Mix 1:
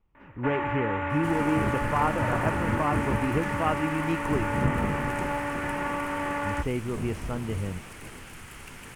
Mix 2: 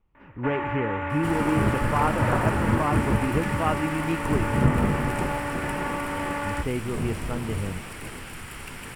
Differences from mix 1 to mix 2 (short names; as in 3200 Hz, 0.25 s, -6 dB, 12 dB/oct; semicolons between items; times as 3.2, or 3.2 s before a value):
speech: send +6.0 dB; second sound +5.5 dB; master: add notch 6400 Hz, Q 7.1